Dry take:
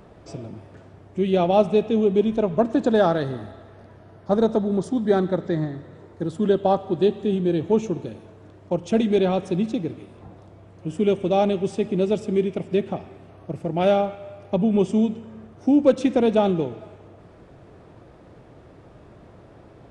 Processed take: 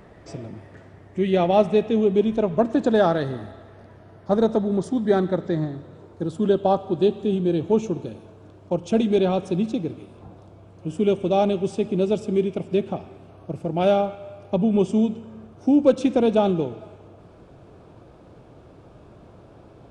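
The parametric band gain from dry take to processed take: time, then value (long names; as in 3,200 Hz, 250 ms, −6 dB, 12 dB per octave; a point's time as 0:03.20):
parametric band 1,900 Hz 0.28 octaves
0:01.73 +9.5 dB
0:02.17 +1.5 dB
0:05.31 +1.5 dB
0:05.79 −8.5 dB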